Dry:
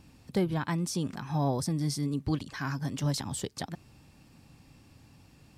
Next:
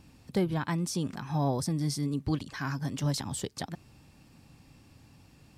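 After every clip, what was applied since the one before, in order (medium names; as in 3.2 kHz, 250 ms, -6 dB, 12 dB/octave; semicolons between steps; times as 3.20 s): no audible change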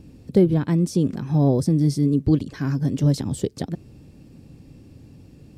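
resonant low shelf 640 Hz +10.5 dB, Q 1.5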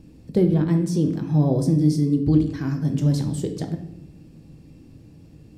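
simulated room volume 220 m³, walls mixed, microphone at 0.61 m; trim -3 dB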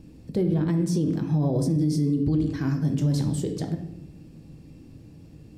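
peak limiter -16 dBFS, peak gain reduction 9.5 dB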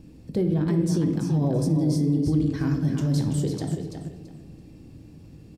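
feedback delay 334 ms, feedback 23%, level -7 dB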